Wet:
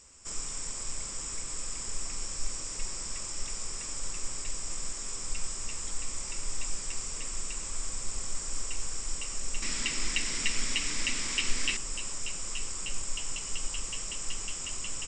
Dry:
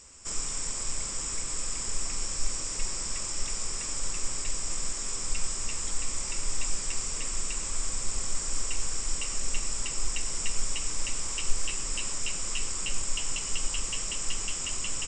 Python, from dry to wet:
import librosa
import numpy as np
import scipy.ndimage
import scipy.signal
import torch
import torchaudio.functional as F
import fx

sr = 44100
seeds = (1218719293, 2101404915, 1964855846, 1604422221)

y = fx.graphic_eq(x, sr, hz=(250, 2000, 4000), db=(12, 12, 9), at=(9.62, 11.77))
y = y * 10.0 ** (-4.0 / 20.0)